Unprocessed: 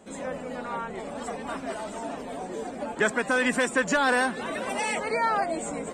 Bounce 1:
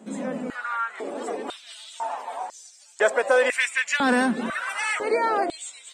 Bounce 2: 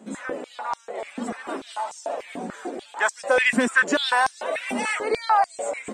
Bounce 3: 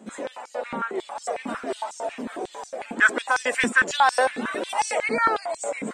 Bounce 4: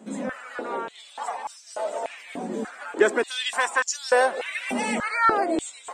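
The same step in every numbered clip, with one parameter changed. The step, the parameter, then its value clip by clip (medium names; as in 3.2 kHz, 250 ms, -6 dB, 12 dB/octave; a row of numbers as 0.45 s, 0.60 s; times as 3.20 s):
step-sequenced high-pass, rate: 2 Hz, 6.8 Hz, 11 Hz, 3.4 Hz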